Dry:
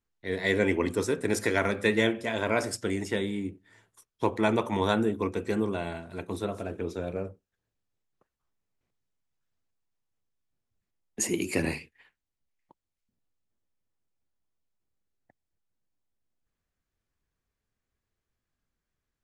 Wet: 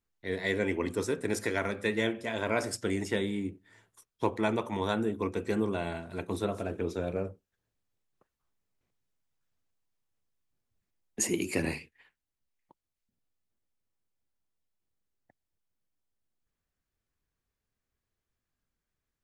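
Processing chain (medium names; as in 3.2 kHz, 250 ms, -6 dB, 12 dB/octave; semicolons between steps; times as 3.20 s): gain riding within 3 dB 0.5 s; trim -2.5 dB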